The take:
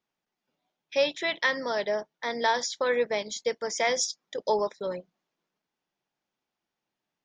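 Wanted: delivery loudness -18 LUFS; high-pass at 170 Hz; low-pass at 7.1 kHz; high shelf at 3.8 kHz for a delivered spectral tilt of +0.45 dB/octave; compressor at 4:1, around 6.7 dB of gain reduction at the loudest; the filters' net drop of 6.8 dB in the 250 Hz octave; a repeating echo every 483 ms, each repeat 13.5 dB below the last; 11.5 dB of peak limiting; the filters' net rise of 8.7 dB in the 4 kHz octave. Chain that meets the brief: high-pass 170 Hz; low-pass 7.1 kHz; peaking EQ 250 Hz -7.5 dB; treble shelf 3.8 kHz +7 dB; peaking EQ 4 kHz +7 dB; compression 4:1, threshold -25 dBFS; peak limiter -21.5 dBFS; feedback delay 483 ms, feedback 21%, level -13.5 dB; trim +14 dB

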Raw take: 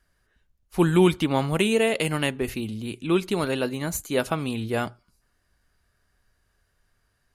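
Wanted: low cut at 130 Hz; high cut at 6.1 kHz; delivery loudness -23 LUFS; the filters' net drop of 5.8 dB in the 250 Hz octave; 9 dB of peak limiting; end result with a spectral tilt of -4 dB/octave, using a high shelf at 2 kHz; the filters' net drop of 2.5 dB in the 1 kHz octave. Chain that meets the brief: high-pass 130 Hz; low-pass 6.1 kHz; peaking EQ 250 Hz -8.5 dB; peaking EQ 1 kHz -4.5 dB; treble shelf 2 kHz +7 dB; trim +5.5 dB; peak limiter -10 dBFS

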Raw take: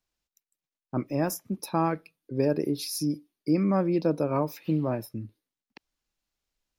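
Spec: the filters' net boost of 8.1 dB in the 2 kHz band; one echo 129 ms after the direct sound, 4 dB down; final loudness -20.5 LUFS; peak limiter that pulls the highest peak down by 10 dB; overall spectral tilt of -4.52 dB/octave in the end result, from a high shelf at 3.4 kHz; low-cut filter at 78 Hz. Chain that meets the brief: high-pass 78 Hz; peaking EQ 2 kHz +8 dB; treble shelf 3.4 kHz +9 dB; peak limiter -21.5 dBFS; delay 129 ms -4 dB; trim +10 dB

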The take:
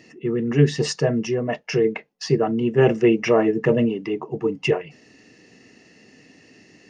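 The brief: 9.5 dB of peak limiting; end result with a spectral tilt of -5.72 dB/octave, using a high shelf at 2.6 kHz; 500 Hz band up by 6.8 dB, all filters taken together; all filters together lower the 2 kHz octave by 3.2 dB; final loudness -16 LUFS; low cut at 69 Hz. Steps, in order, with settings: high-pass 69 Hz; peaking EQ 500 Hz +8.5 dB; peaking EQ 2 kHz -8.5 dB; treble shelf 2.6 kHz +7 dB; trim +4 dB; peak limiter -5 dBFS

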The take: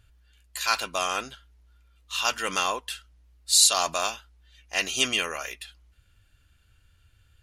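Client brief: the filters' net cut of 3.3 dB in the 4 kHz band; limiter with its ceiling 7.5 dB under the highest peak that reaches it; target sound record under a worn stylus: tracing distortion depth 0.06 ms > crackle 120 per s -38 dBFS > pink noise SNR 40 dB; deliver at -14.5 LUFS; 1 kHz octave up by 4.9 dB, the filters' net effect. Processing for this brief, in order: peaking EQ 1 kHz +6.5 dB; peaking EQ 4 kHz -4.5 dB; peak limiter -13.5 dBFS; tracing distortion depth 0.06 ms; crackle 120 per s -38 dBFS; pink noise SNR 40 dB; trim +13 dB

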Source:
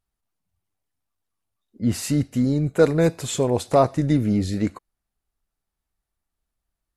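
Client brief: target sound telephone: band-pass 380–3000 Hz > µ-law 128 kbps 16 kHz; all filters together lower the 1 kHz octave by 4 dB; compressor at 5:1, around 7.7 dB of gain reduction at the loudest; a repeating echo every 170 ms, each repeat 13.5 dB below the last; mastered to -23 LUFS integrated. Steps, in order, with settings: peaking EQ 1 kHz -6 dB; compression 5:1, threshold -20 dBFS; band-pass 380–3000 Hz; feedback delay 170 ms, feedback 21%, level -13.5 dB; trim +8.5 dB; µ-law 128 kbps 16 kHz

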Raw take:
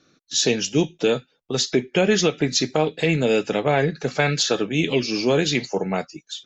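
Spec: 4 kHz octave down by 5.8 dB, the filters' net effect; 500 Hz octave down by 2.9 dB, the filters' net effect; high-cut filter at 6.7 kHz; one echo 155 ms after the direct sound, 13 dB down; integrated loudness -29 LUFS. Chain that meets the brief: low-pass 6.7 kHz; peaking EQ 500 Hz -3.5 dB; peaking EQ 4 kHz -6.5 dB; delay 155 ms -13 dB; trim -5 dB

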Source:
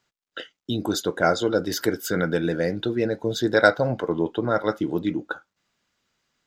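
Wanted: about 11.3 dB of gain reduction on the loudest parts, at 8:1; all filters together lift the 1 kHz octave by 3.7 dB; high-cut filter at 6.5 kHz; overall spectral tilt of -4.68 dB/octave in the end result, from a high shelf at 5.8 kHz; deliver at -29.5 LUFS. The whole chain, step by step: low-pass 6.5 kHz; peaking EQ 1 kHz +6.5 dB; treble shelf 5.8 kHz -8.5 dB; compression 8:1, threshold -19 dBFS; trim -3 dB

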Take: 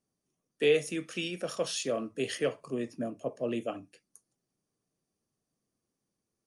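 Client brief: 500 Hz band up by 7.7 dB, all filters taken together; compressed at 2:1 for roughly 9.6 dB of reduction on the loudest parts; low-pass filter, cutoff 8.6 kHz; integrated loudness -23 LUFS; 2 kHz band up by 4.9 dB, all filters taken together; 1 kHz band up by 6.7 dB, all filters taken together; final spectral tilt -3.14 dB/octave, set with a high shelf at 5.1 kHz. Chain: low-pass 8.6 kHz; peaking EQ 500 Hz +7.5 dB; peaking EQ 1 kHz +5 dB; peaking EQ 2 kHz +6 dB; treble shelf 5.1 kHz -4 dB; compression 2:1, threshold -31 dBFS; trim +9.5 dB

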